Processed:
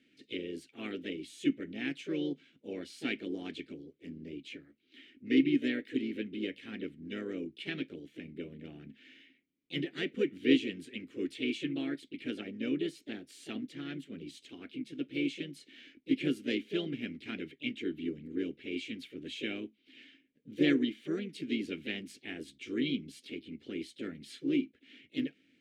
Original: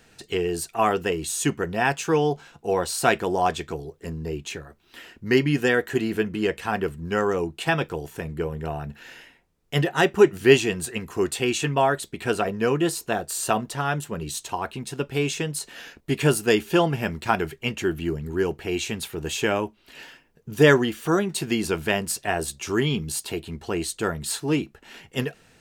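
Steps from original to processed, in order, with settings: vowel filter i; harmony voices +3 st -8 dB, +4 st -15 dB

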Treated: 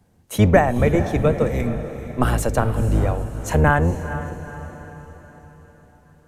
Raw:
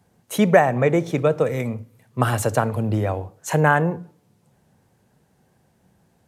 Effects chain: octave divider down 1 oct, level +3 dB; echo that smears into a reverb 461 ms, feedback 49%, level -12 dB; trim -1 dB

